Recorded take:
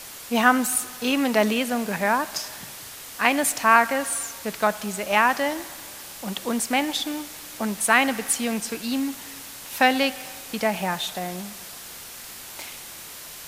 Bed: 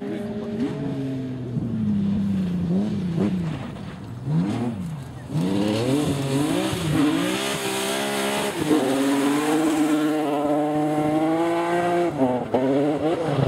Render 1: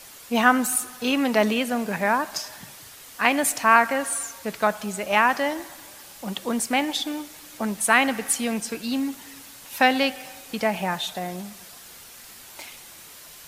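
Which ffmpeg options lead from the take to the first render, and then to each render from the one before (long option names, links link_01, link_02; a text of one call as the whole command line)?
ffmpeg -i in.wav -af "afftdn=noise_reduction=6:noise_floor=-40" out.wav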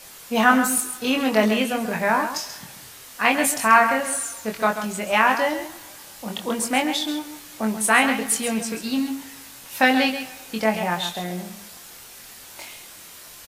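ffmpeg -i in.wav -filter_complex "[0:a]asplit=2[link_01][link_02];[link_02]adelay=23,volume=-4dB[link_03];[link_01][link_03]amix=inputs=2:normalize=0,asplit=2[link_04][link_05];[link_05]aecho=0:1:135:0.316[link_06];[link_04][link_06]amix=inputs=2:normalize=0" out.wav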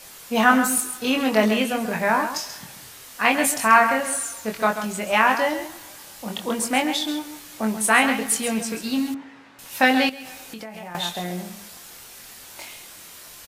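ffmpeg -i in.wav -filter_complex "[0:a]asettb=1/sr,asplit=3[link_01][link_02][link_03];[link_01]atrim=end=9.144[link_04];[link_02]atrim=start=9.14:end=9.59,asetpts=PTS-STARTPTS,afade=type=in:duration=0.004:curve=qsin,afade=type=out:start_time=0.446:duration=0.004:curve=qsin,highpass=140,lowpass=2000[link_05];[link_03]atrim=start=9.586[link_06];[link_04][link_05]acrossfade=duration=0.004:curve1=hsin:curve2=qsin[link_07];[link_07][link_06]acrossfade=duration=0.004:curve1=qsin:curve2=hsin,asettb=1/sr,asplit=3[link_08][link_09][link_10];[link_08]atrim=end=10.094[link_11];[link_09]atrim=start=10.09:end=10.95,asetpts=PTS-STARTPTS,afade=type=in:duration=0.004:curve=qsin,afade=type=out:start_time=0.856:duration=0.004:curve=qsin,acompressor=threshold=-32dB:ratio=12:attack=3.2:release=140:knee=1:detection=peak[link_12];[link_10]atrim=start=10.946[link_13];[link_11][link_12]acrossfade=duration=0.004:curve1=hsin:curve2=qsin[link_14];[link_14][link_13]acrossfade=duration=0.004:curve1=qsin:curve2=hsin" out.wav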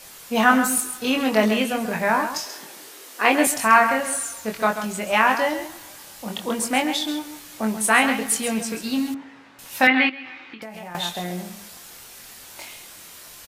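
ffmpeg -i in.wav -filter_complex "[0:a]asettb=1/sr,asplit=3[link_01][link_02][link_03];[link_01]atrim=end=2.464[link_04];[link_02]atrim=start=2.46:end=3.47,asetpts=PTS-STARTPTS,afade=type=in:duration=0.004:curve=qsin,afade=type=out:start_time=1.006:duration=0.004:curve=qsin,highpass=frequency=350:width_type=q:width=3[link_05];[link_03]atrim=start=3.466[link_06];[link_04][link_05]acrossfade=duration=0.004:curve1=hsin:curve2=qsin[link_07];[link_07][link_06]acrossfade=duration=0.004:curve1=qsin:curve2=hsin,asettb=1/sr,asplit=3[link_08][link_09][link_10];[link_08]atrim=end=9.874[link_11];[link_09]atrim=start=9.87:end=10.62,asetpts=PTS-STARTPTS,afade=type=in:duration=0.004:curve=qsin,afade=type=out:start_time=0.746:duration=0.004:curve=qsin,highpass=170,equalizer=frequency=190:width_type=q:width=4:gain=-10,equalizer=frequency=320:width_type=q:width=4:gain=6,equalizer=frequency=460:width_type=q:width=4:gain=-10,equalizer=frequency=660:width_type=q:width=4:gain=-9,equalizer=frequency=1200:width_type=q:width=4:gain=4,equalizer=frequency=2100:width_type=q:width=4:gain=10,lowpass=frequency=3400:width=0.5412,lowpass=frequency=3400:width=1.3066[link_12];[link_10]atrim=start=10.616[link_13];[link_11][link_12]acrossfade=duration=0.004:curve1=hsin:curve2=qsin[link_14];[link_14][link_13]acrossfade=duration=0.004:curve1=qsin:curve2=hsin" out.wav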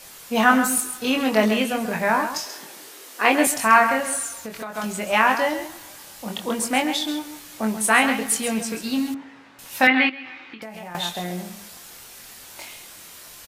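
ffmpeg -i in.wav -filter_complex "[0:a]asplit=3[link_01][link_02][link_03];[link_01]afade=type=out:start_time=4.28:duration=0.02[link_04];[link_02]acompressor=threshold=-28dB:ratio=12:attack=3.2:release=140:knee=1:detection=peak,afade=type=in:start_time=4.28:duration=0.02,afade=type=out:start_time=4.74:duration=0.02[link_05];[link_03]afade=type=in:start_time=4.74:duration=0.02[link_06];[link_04][link_05][link_06]amix=inputs=3:normalize=0" out.wav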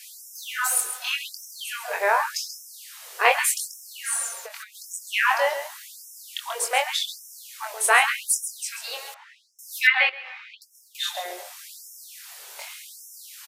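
ffmpeg -i in.wav -af "afftfilt=real='re*gte(b*sr/1024,350*pow(5300/350,0.5+0.5*sin(2*PI*0.86*pts/sr)))':imag='im*gte(b*sr/1024,350*pow(5300/350,0.5+0.5*sin(2*PI*0.86*pts/sr)))':win_size=1024:overlap=0.75" out.wav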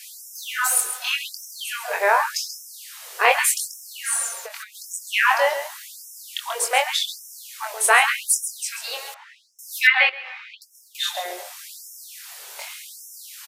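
ffmpeg -i in.wav -af "volume=3dB,alimiter=limit=-2dB:level=0:latency=1" out.wav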